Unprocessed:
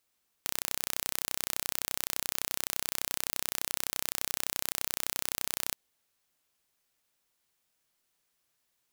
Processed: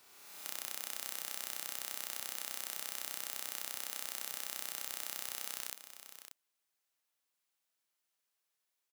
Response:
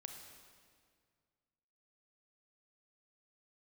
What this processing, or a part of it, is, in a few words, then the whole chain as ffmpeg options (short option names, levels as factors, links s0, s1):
ghost voice: -filter_complex "[0:a]areverse[s0];[1:a]atrim=start_sample=2205[s1];[s0][s1]afir=irnorm=-1:irlink=0,areverse,highpass=f=440:p=1,aecho=1:1:585:0.282,volume=0.708"